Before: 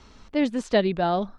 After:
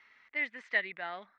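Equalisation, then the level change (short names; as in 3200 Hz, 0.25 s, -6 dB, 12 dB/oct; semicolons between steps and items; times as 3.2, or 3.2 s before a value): band-pass 2000 Hz, Q 8.5; air absorption 59 m; +8.5 dB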